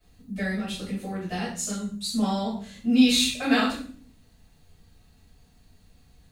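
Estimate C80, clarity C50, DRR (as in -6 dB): 9.0 dB, 4.5 dB, -11.0 dB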